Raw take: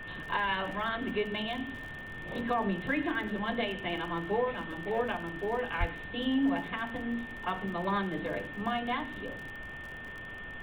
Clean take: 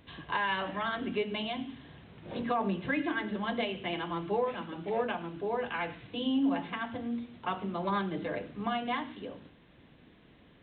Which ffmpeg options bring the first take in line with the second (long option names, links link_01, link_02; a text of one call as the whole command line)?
ffmpeg -i in.wav -filter_complex "[0:a]adeclick=threshold=4,bandreject=frequency=1800:width=30,asplit=3[link_01][link_02][link_03];[link_01]afade=type=out:start_time=5.79:duration=0.02[link_04];[link_02]highpass=frequency=140:width=0.5412,highpass=frequency=140:width=1.3066,afade=type=in:start_time=5.79:duration=0.02,afade=type=out:start_time=5.91:duration=0.02[link_05];[link_03]afade=type=in:start_time=5.91:duration=0.02[link_06];[link_04][link_05][link_06]amix=inputs=3:normalize=0,afftdn=noise_reduction=15:noise_floor=-42" out.wav